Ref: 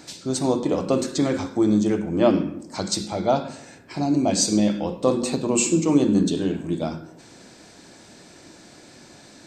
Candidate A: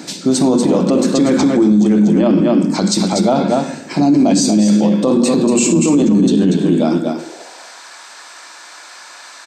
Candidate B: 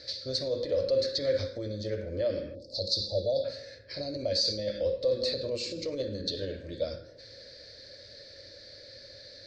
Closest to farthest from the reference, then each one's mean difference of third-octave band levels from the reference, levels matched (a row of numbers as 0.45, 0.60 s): A, B; 5.0, 7.5 dB